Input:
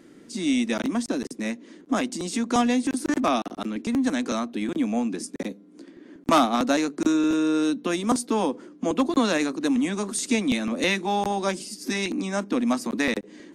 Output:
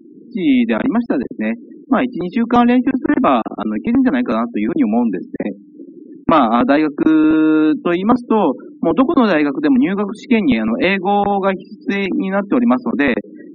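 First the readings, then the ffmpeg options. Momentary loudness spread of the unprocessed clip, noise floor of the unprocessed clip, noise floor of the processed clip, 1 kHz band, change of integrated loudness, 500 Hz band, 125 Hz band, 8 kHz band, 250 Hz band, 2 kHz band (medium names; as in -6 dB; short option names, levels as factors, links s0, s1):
9 LU, -50 dBFS, -41 dBFS, +9.0 dB, +9.5 dB, +10.0 dB, +10.0 dB, under -20 dB, +10.0 dB, +8.0 dB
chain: -af "lowpass=2400,afftfilt=real='re*gte(hypot(re,im),0.01)':imag='im*gte(hypot(re,im),0.01)':win_size=1024:overlap=0.75,alimiter=level_in=3.55:limit=0.891:release=50:level=0:latency=1,volume=0.891"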